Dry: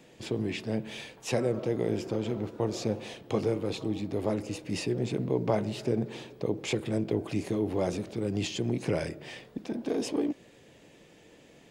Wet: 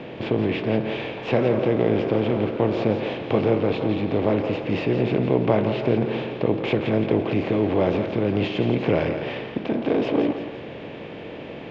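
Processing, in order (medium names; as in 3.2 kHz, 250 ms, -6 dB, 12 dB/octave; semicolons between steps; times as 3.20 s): spectral levelling over time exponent 0.6; low-pass 3.1 kHz 24 dB/octave; thinning echo 170 ms, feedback 47%, high-pass 420 Hz, level -8 dB; trim +5 dB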